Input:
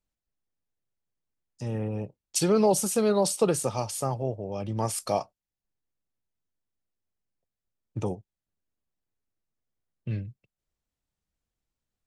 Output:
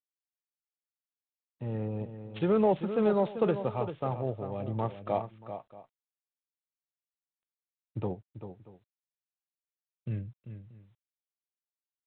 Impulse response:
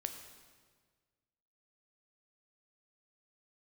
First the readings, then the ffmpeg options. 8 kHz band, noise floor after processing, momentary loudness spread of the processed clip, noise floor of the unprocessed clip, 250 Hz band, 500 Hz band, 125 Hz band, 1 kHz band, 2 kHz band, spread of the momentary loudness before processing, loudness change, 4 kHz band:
below −40 dB, below −85 dBFS, 19 LU, below −85 dBFS, −2.5 dB, −2.5 dB, −2.5 dB, −3.0 dB, −3.5 dB, 16 LU, −4.0 dB, −14.5 dB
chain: -af "aecho=1:1:391|632:0.316|0.1,adynamicsmooth=sensitivity=2:basefreq=2400,volume=-3dB" -ar 8000 -c:a adpcm_g726 -b:a 32k

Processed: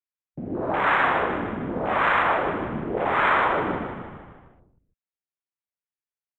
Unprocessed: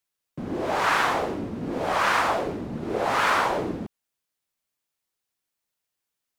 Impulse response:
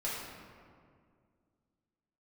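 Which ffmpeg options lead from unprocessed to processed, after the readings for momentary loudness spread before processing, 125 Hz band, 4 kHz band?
12 LU, +1.5 dB, −4.5 dB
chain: -filter_complex "[0:a]acrossover=split=6900[link_01][link_02];[link_02]acompressor=threshold=-56dB:ratio=4:attack=1:release=60[link_03];[link_01][link_03]amix=inputs=2:normalize=0,highshelf=frequency=3300:width_type=q:width=1.5:gain=-11,afwtdn=0.0316,asplit=8[link_04][link_05][link_06][link_07][link_08][link_09][link_10][link_11];[link_05]adelay=153,afreqshift=-33,volume=-7dB[link_12];[link_06]adelay=306,afreqshift=-66,volume=-12dB[link_13];[link_07]adelay=459,afreqshift=-99,volume=-17.1dB[link_14];[link_08]adelay=612,afreqshift=-132,volume=-22.1dB[link_15];[link_09]adelay=765,afreqshift=-165,volume=-27.1dB[link_16];[link_10]adelay=918,afreqshift=-198,volume=-32.2dB[link_17];[link_11]adelay=1071,afreqshift=-231,volume=-37.2dB[link_18];[link_04][link_12][link_13][link_14][link_15][link_16][link_17][link_18]amix=inputs=8:normalize=0"

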